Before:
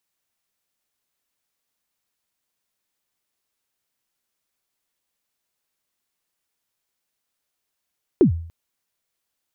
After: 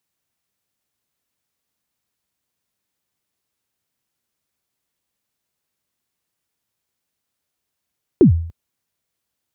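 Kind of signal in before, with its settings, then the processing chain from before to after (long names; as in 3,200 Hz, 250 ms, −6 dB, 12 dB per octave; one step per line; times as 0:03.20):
synth kick length 0.29 s, from 420 Hz, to 83 Hz, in 106 ms, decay 0.55 s, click off, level −7.5 dB
high-pass filter 62 Hz
low-shelf EQ 250 Hz +10 dB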